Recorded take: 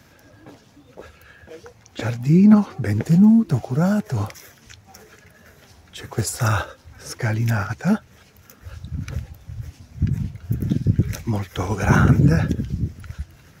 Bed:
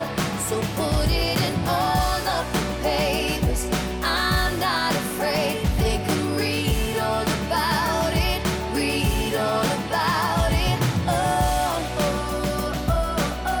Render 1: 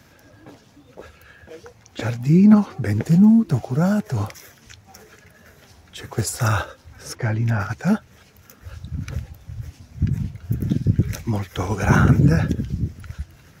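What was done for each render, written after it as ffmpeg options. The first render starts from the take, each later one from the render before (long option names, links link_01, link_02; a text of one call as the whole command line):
ffmpeg -i in.wav -filter_complex "[0:a]asplit=3[link_01][link_02][link_03];[link_01]afade=type=out:start_time=7.14:duration=0.02[link_04];[link_02]aemphasis=mode=reproduction:type=75kf,afade=type=in:start_time=7.14:duration=0.02,afade=type=out:start_time=7.59:duration=0.02[link_05];[link_03]afade=type=in:start_time=7.59:duration=0.02[link_06];[link_04][link_05][link_06]amix=inputs=3:normalize=0" out.wav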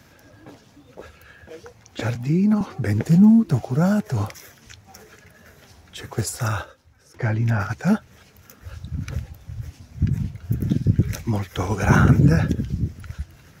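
ffmpeg -i in.wav -filter_complex "[0:a]asettb=1/sr,asplit=3[link_01][link_02][link_03];[link_01]atrim=end=2.154[link_04];[link_02]atrim=start=2.15:end=2.61,asetpts=PTS-STARTPTS,afade=type=in:duration=0.004:curve=qsin,afade=type=out:start_time=0.456:duration=0.004:curve=qsin,acrossover=split=160|5200[link_05][link_06][link_07];[link_05]acompressor=threshold=-32dB:ratio=4[link_08];[link_06]acompressor=threshold=-18dB:ratio=4[link_09];[link_07]acompressor=threshold=-54dB:ratio=4[link_10];[link_08][link_09][link_10]amix=inputs=3:normalize=0[link_11];[link_03]atrim=start=2.606[link_12];[link_04][link_11]acrossfade=duration=0.004:curve1=hsin:curve2=qsin[link_13];[link_13][link_12]acrossfade=duration=0.004:curve1=qsin:curve2=hsin,asplit=2[link_14][link_15];[link_14]atrim=end=7.14,asetpts=PTS-STARTPTS,afade=type=out:start_time=6.01:duration=1.13:silence=0.0749894[link_16];[link_15]atrim=start=7.14,asetpts=PTS-STARTPTS,afade=type=in:duration=0.004:curve=hsin:silence=0.0749894[link_17];[link_16][link_17]concat=n=2:v=0:a=1" out.wav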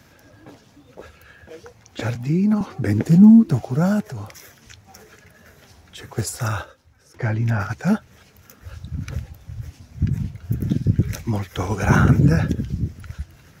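ffmpeg -i in.wav -filter_complex "[0:a]asettb=1/sr,asplit=3[link_01][link_02][link_03];[link_01]atrim=end=2.824[link_04];[link_02]atrim=start=2.82:end=3.53,asetpts=PTS-STARTPTS,afade=type=in:duration=0.004:curve=qsin,afade=type=out:start_time=0.706:duration=0.004:curve=qsin,equalizer=frequency=280:width=1.8:gain=7[link_05];[link_03]atrim=start=3.526[link_06];[link_04][link_05]acrossfade=duration=0.004:curve1=hsin:curve2=qsin[link_07];[link_07][link_06]acrossfade=duration=0.004:curve1=qsin:curve2=hsin,asettb=1/sr,asplit=3[link_08][link_09][link_10];[link_08]atrim=end=4.064[link_11];[link_09]atrim=start=4.06:end=6.16,asetpts=PTS-STARTPTS,afade=type=in:duration=0.004:curve=qsin,afade=type=out:start_time=2.096:duration=0.004:curve=qsin,acompressor=threshold=-35dB:ratio=2:attack=3.2:release=140:knee=1:detection=peak[link_12];[link_10]atrim=start=6.156[link_13];[link_11][link_12]acrossfade=duration=0.004:curve1=hsin:curve2=qsin[link_14];[link_14][link_13]acrossfade=duration=0.004:curve1=qsin:curve2=hsin" out.wav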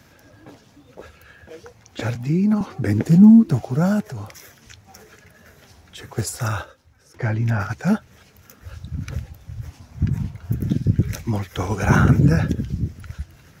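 ffmpeg -i in.wav -filter_complex "[0:a]asettb=1/sr,asplit=3[link_01][link_02][link_03];[link_01]atrim=end=9.644[link_04];[link_02]atrim=start=9.64:end=10.54,asetpts=PTS-STARTPTS,afade=type=in:duration=0.004:curve=qsin,afade=type=out:start_time=0.896:duration=0.004:curve=qsin,equalizer=frequency=950:width_type=o:width=1:gain=7[link_05];[link_03]atrim=start=10.536[link_06];[link_04][link_05]acrossfade=duration=0.004:curve1=hsin:curve2=qsin[link_07];[link_07][link_06]acrossfade=duration=0.004:curve1=qsin:curve2=hsin" out.wav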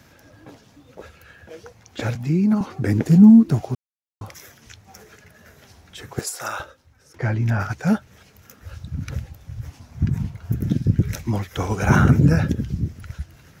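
ffmpeg -i in.wav -filter_complex "[0:a]asettb=1/sr,asplit=3[link_01][link_02][link_03];[link_01]atrim=end=6.194[link_04];[link_02]atrim=start=6.19:end=6.6,asetpts=PTS-STARTPTS,afade=type=in:duration=0.004:curve=qsin,afade=type=out:start_time=0.406:duration=0.004:curve=qsin,highpass=440[link_05];[link_03]atrim=start=6.596[link_06];[link_04][link_05]acrossfade=duration=0.004:curve1=hsin:curve2=qsin[link_07];[link_07][link_06]acrossfade=duration=0.004:curve1=qsin:curve2=hsin,asplit=3[link_08][link_09][link_10];[link_08]atrim=end=3.75,asetpts=PTS-STARTPTS,afade=type=out:start_time=3.746:duration=0.004:curve=hsin[link_11];[link_09]atrim=start=3.75:end=4.21,asetpts=PTS-STARTPTS,volume=0[link_12];[link_10]atrim=start=4.21,asetpts=PTS-STARTPTS,afade=type=in:duration=0.004:curve=hsin[link_13];[link_11][link_12][link_13]concat=n=3:v=0:a=1" out.wav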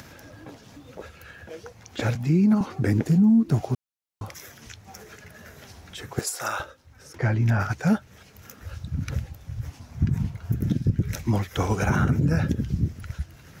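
ffmpeg -i in.wav -af "acompressor=mode=upward:threshold=-39dB:ratio=2.5,alimiter=limit=-12.5dB:level=0:latency=1:release=246" out.wav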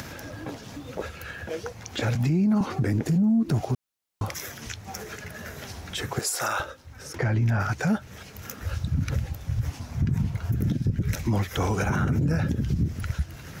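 ffmpeg -i in.wav -af "acontrast=82,alimiter=limit=-17dB:level=0:latency=1:release=110" out.wav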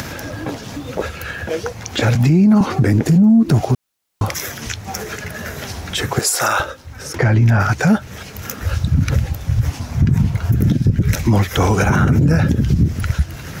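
ffmpeg -i in.wav -af "volume=10.5dB" out.wav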